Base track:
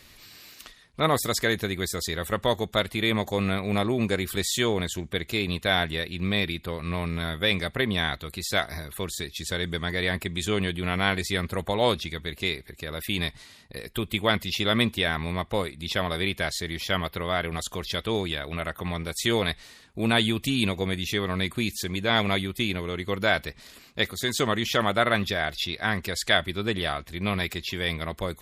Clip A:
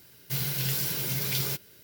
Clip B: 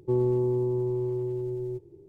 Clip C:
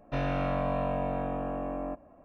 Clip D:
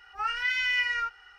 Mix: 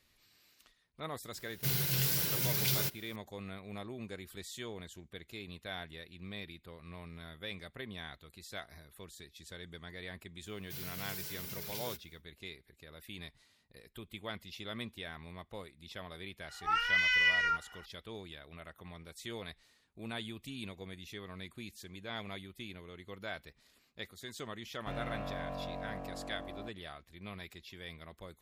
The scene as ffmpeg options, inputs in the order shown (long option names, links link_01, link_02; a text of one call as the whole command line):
ffmpeg -i bed.wav -i cue0.wav -i cue1.wav -i cue2.wav -i cue3.wav -filter_complex "[1:a]asplit=2[link_01][link_02];[0:a]volume=-19dB[link_03];[link_02]aecho=1:1:4.7:0.92[link_04];[3:a]aeval=exprs='sgn(val(0))*max(abs(val(0))-0.00237,0)':channel_layout=same[link_05];[link_01]atrim=end=1.83,asetpts=PTS-STARTPTS,volume=-2.5dB,afade=type=in:duration=0.004:curve=hsin,afade=type=out:start_time=1.826:duration=0.004:curve=hsin,adelay=1330[link_06];[link_04]atrim=end=1.83,asetpts=PTS-STARTPTS,volume=-16dB,afade=type=in:duration=0.1,afade=type=out:start_time=1.73:duration=0.1,adelay=10400[link_07];[4:a]atrim=end=1.38,asetpts=PTS-STARTPTS,volume=-1dB,afade=type=in:duration=0.004:curve=hsin,afade=type=out:start_time=1.376:duration=0.004:curve=hsin,adelay=16480[link_08];[link_05]atrim=end=2.24,asetpts=PTS-STARTPTS,volume=-10.5dB,afade=type=in:duration=0.004:curve=hsin,afade=type=out:start_time=2.236:duration=0.004:curve=hsin,adelay=24740[link_09];[link_03][link_06][link_07][link_08][link_09]amix=inputs=5:normalize=0" out.wav